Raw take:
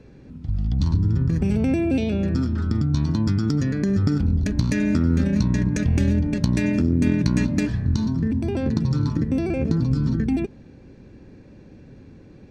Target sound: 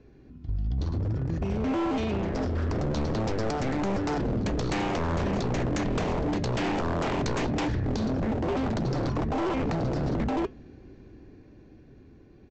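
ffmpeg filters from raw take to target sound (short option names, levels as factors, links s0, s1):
-af "highshelf=f=4700:g=-5.5,aecho=1:1:2.8:0.41,dynaudnorm=f=380:g=11:m=3.76,aresample=16000,aeval=exprs='0.168*(abs(mod(val(0)/0.168+3,4)-2)-1)':c=same,aresample=44100,flanger=delay=4.9:depth=1.8:regen=-85:speed=0.57:shape=triangular,volume=0.75"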